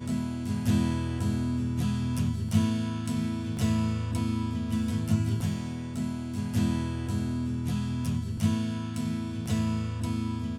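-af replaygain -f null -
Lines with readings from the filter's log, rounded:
track_gain = +12.2 dB
track_peak = 0.178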